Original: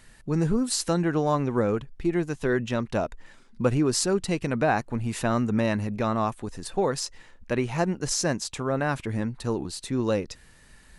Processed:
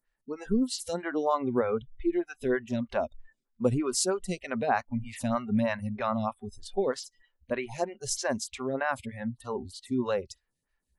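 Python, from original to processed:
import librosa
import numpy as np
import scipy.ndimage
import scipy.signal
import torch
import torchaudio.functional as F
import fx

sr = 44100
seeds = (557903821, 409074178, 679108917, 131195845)

y = fx.noise_reduce_blind(x, sr, reduce_db=25)
y = fx.stagger_phaser(y, sr, hz=3.2)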